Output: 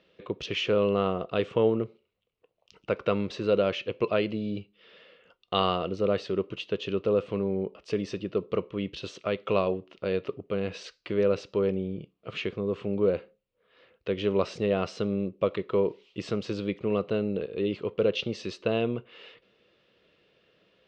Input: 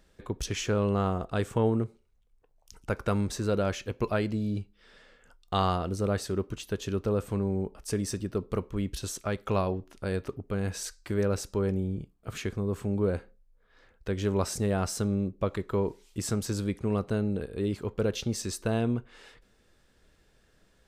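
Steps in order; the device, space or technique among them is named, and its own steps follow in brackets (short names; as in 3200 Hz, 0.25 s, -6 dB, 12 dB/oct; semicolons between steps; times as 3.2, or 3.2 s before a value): kitchen radio (speaker cabinet 190–4000 Hz, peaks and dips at 250 Hz -7 dB, 510 Hz +4 dB, 840 Hz -8 dB, 1600 Hz -8 dB, 2800 Hz +7 dB); gain +3.5 dB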